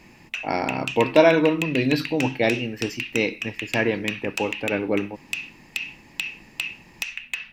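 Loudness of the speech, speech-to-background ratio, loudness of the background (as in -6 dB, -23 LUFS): -23.5 LUFS, 7.5 dB, -31.0 LUFS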